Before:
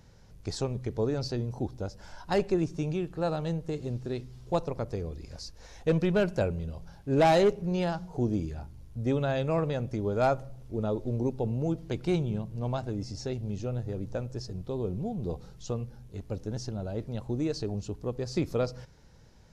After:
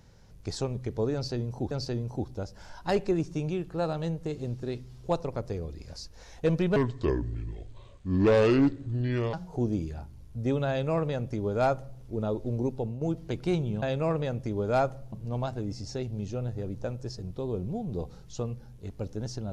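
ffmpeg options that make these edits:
-filter_complex "[0:a]asplit=7[a][b][c][d][e][f][g];[a]atrim=end=1.712[h];[b]atrim=start=1.138:end=6.194[i];[c]atrim=start=6.19:end=7.94,asetpts=PTS-STARTPTS,asetrate=29988,aresample=44100[j];[d]atrim=start=7.936:end=11.62,asetpts=PTS-STARTPTS,afade=t=out:st=3.434:d=0.25:silence=0.334965[k];[e]atrim=start=11.62:end=12.432,asetpts=PTS-STARTPTS,afade=t=in:d=0.004:c=hsin:silence=0.334965[l];[f]atrim=start=9.298:end=10.602[m];[g]atrim=start=12.428[n];[h][i]acrossfade=d=0.004:c1=hsin:c2=hsin[o];[o][j]acrossfade=d=0.004:c1=hsin:c2=hsin[p];[k][l]concat=n=2:v=0:a=1[q];[p][q]acrossfade=d=0.004:c1=hsin:c2=hsin[r];[r][m]acrossfade=d=0.004:c1=hsin:c2=hsin[s];[s][n]acrossfade=d=0.004:c1=hsin:c2=hsin"

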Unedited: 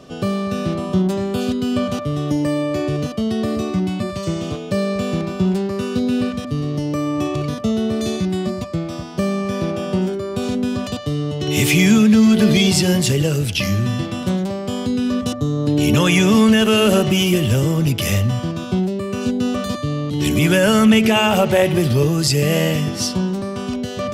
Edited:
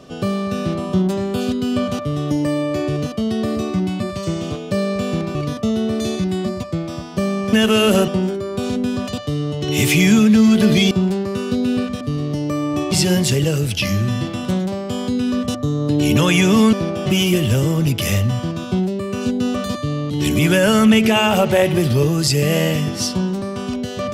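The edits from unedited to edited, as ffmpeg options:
-filter_complex "[0:a]asplit=8[a][b][c][d][e][f][g][h];[a]atrim=end=5.352[i];[b]atrim=start=7.358:end=9.542[j];[c]atrim=start=16.508:end=17.062[k];[d]atrim=start=9.868:end=12.702[l];[e]atrim=start=5.348:end=7.362[m];[f]atrim=start=12.698:end=16.512[n];[g]atrim=start=9.538:end=9.872[o];[h]atrim=start=17.058[p];[i][j]acrossfade=d=0.004:c1=hsin:c2=hsin[q];[q][k]acrossfade=d=0.004:c1=hsin:c2=hsin[r];[r][l]acrossfade=d=0.004:c1=hsin:c2=hsin[s];[s][m]acrossfade=d=0.004:c1=hsin:c2=hsin[t];[t][n]acrossfade=d=0.004:c1=hsin:c2=hsin[u];[u][o]acrossfade=d=0.004:c1=hsin:c2=hsin[v];[v][p]acrossfade=d=0.004:c1=hsin:c2=hsin"

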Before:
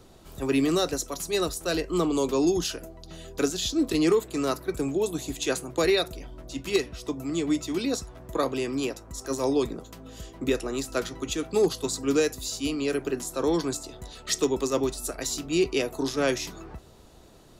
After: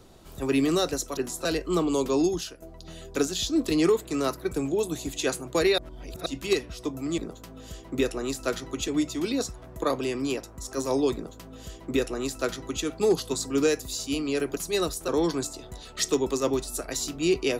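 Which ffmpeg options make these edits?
-filter_complex "[0:a]asplit=10[a][b][c][d][e][f][g][h][i][j];[a]atrim=end=1.172[k];[b]atrim=start=13.098:end=13.382[l];[c]atrim=start=1.678:end=2.85,asetpts=PTS-STARTPTS,afade=t=out:st=0.752:d=0.42:silence=0.199526[m];[d]atrim=start=2.85:end=6.012,asetpts=PTS-STARTPTS,afade=t=in:d=0.004:c=hsin:silence=0.199526[n];[e]atrim=start=6.008:end=6.492,asetpts=PTS-STARTPTS,areverse[o];[f]atrim=start=6.488:end=7.412[p];[g]atrim=start=9.668:end=11.372[q];[h]atrim=start=7.408:end=13.102[r];[i]atrim=start=1.168:end=1.682[s];[j]atrim=start=13.378[t];[k][l]acrossfade=d=0.004:c1=hsin:c2=hsin[u];[m][n]concat=n=2:v=0:a=1[v];[u][v]acrossfade=d=0.004:c1=hsin:c2=hsin[w];[w][o]acrossfade=d=0.004:c1=hsin:c2=hsin[x];[x][p]acrossfade=d=0.004:c1=hsin:c2=hsin[y];[y][q]acrossfade=d=0.004:c1=hsin:c2=hsin[z];[z][r]acrossfade=d=0.004:c1=hsin:c2=hsin[aa];[aa][s]acrossfade=d=0.004:c1=hsin:c2=hsin[ab];[ab][t]acrossfade=d=0.004:c1=hsin:c2=hsin"

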